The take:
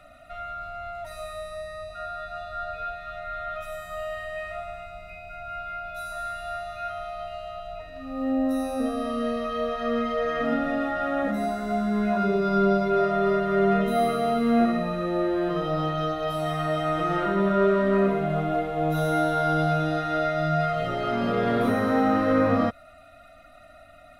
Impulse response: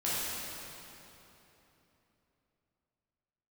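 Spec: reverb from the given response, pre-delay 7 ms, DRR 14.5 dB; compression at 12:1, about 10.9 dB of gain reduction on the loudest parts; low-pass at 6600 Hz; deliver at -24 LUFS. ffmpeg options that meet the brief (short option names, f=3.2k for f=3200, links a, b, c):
-filter_complex "[0:a]lowpass=6.6k,acompressor=threshold=-28dB:ratio=12,asplit=2[a][b];[1:a]atrim=start_sample=2205,adelay=7[c];[b][c]afir=irnorm=-1:irlink=0,volume=-23dB[d];[a][d]amix=inputs=2:normalize=0,volume=9dB"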